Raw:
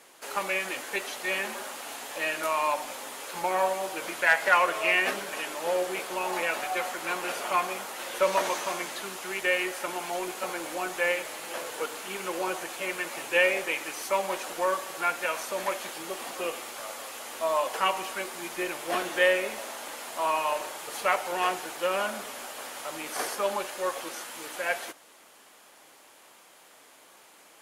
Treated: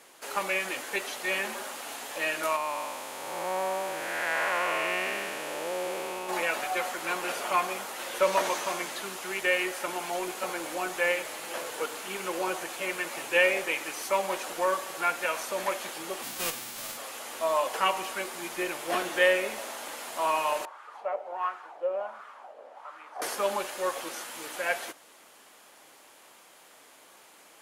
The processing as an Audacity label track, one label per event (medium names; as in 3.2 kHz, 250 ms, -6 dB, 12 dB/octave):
2.560000	6.290000	spectral blur width 402 ms
16.220000	16.960000	formants flattened exponent 0.3
20.650000	23.220000	wah-wah 1.4 Hz 540–1300 Hz, Q 3.4